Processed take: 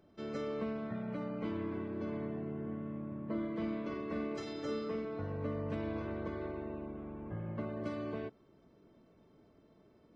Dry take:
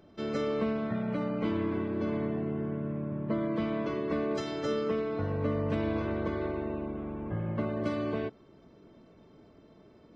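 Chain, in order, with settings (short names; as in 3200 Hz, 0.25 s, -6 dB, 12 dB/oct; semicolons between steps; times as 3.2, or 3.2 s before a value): bell 3400 Hz -2 dB; 2.62–5.05 flutter echo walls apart 7.7 m, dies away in 0.47 s; gain -7.5 dB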